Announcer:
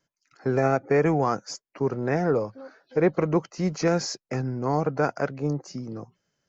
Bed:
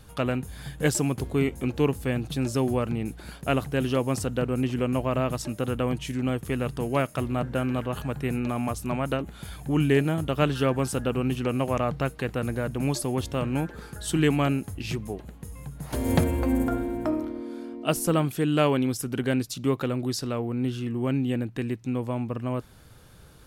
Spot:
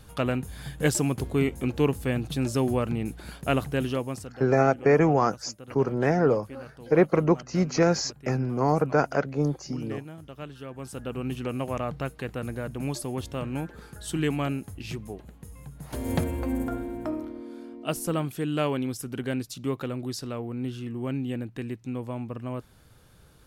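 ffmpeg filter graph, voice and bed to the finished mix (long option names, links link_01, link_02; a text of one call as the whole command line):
ffmpeg -i stem1.wav -i stem2.wav -filter_complex "[0:a]adelay=3950,volume=1.5dB[link_01];[1:a]volume=12dB,afade=type=out:start_time=3.69:duration=0.66:silence=0.149624,afade=type=in:start_time=10.69:duration=0.64:silence=0.251189[link_02];[link_01][link_02]amix=inputs=2:normalize=0" out.wav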